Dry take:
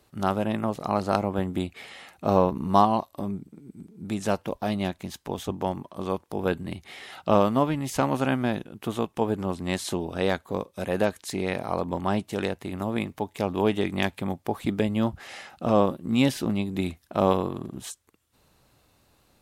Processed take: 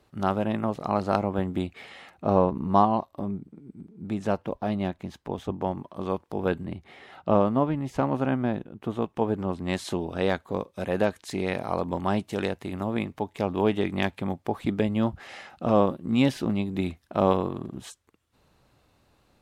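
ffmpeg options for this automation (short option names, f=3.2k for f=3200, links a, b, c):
-af "asetnsamples=n=441:p=0,asendcmd='2.1 lowpass f 1600;5.78 lowpass f 3000;6.65 lowpass f 1100;9.02 lowpass f 2100;9.68 lowpass f 4100;11.31 lowpass f 7300;12.8 lowpass f 3600',lowpass=f=3.4k:p=1"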